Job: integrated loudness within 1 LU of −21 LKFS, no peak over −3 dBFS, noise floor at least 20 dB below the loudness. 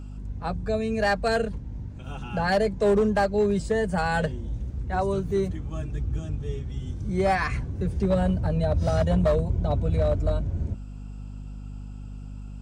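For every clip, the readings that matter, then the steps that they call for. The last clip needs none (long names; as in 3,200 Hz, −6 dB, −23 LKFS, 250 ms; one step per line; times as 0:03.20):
share of clipped samples 0.9%; peaks flattened at −16.0 dBFS; mains hum 50 Hz; hum harmonics up to 250 Hz; level of the hum −35 dBFS; integrated loudness −26.0 LKFS; sample peak −16.0 dBFS; target loudness −21.0 LKFS
→ clipped peaks rebuilt −16 dBFS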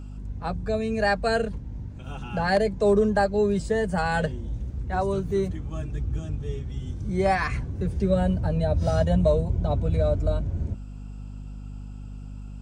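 share of clipped samples 0.0%; mains hum 50 Hz; hum harmonics up to 250 Hz; level of the hum −35 dBFS
→ hum removal 50 Hz, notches 5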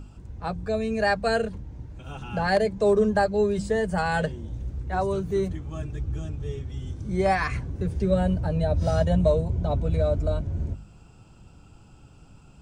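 mains hum none found; integrated loudness −26.0 LKFS; sample peak −9.0 dBFS; target loudness −21.0 LKFS
→ level +5 dB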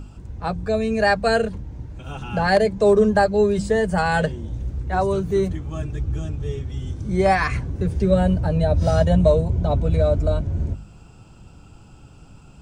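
integrated loudness −21.0 LKFS; sample peak −4.0 dBFS; background noise floor −46 dBFS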